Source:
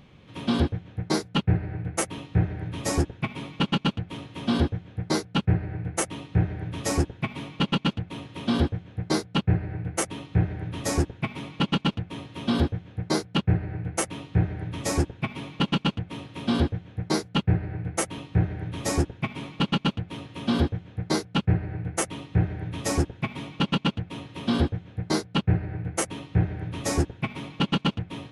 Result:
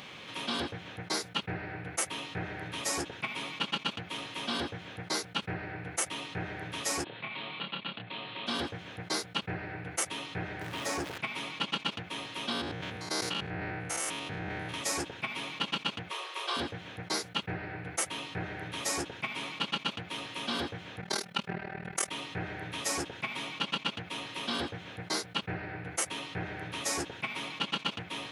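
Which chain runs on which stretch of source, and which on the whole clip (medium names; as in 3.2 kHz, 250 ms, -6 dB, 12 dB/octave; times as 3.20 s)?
7.04–8.47 s: compression 2:1, threshold -41 dBFS + Chebyshev band-pass 110–4100 Hz, order 5 + doubling 27 ms -5 dB
10.61–11.18 s: jump at every zero crossing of -35.5 dBFS + treble shelf 4.3 kHz -11.5 dB
12.52–14.74 s: spectrogram pixelated in time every 100 ms + decay stretcher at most 23 dB/s
16.11–16.57 s: brick-wall FIR high-pass 330 Hz + peaking EQ 1.1 kHz +9.5 dB 0.24 oct
21.01–22.11 s: comb 5.1 ms, depth 81% + AM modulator 39 Hz, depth 75%
whole clip: high-pass 1.4 kHz 6 dB/octave; level flattener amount 50%; trim -3 dB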